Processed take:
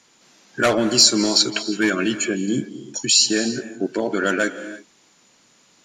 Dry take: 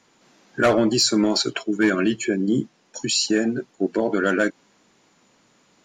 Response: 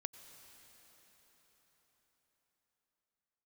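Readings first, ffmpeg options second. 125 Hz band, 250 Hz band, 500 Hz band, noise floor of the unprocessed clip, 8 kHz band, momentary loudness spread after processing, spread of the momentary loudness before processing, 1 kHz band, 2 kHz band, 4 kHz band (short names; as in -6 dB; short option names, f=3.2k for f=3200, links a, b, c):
-1.5 dB, -1.0 dB, -1.0 dB, -62 dBFS, +7.5 dB, 13 LU, 8 LU, +0.5 dB, +2.0 dB, +6.5 dB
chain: -filter_complex "[0:a]highshelf=f=2.4k:g=10[a];[1:a]atrim=start_sample=2205,afade=t=out:st=0.24:d=0.01,atrim=end_sample=11025,asetrate=24696,aresample=44100[b];[a][b]afir=irnorm=-1:irlink=0,volume=-1dB"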